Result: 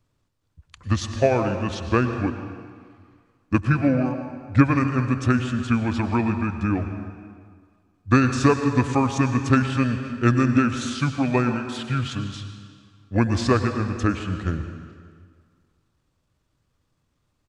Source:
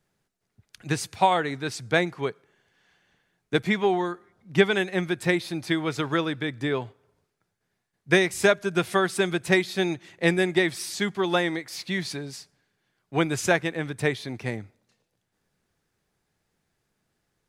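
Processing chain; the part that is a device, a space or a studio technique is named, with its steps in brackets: monster voice (pitch shift -6 st; bass shelf 190 Hz +9 dB; reverberation RT60 1.9 s, pre-delay 92 ms, DRR 7.5 dB)

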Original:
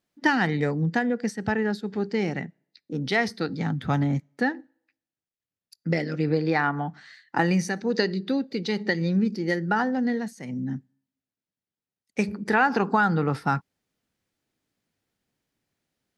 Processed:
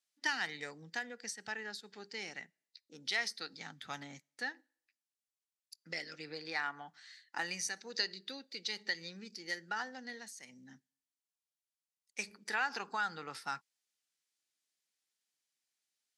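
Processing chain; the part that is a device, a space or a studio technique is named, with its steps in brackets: piezo pickup straight into a mixer (low-pass 8.4 kHz 12 dB/octave; differentiator); trim +2 dB

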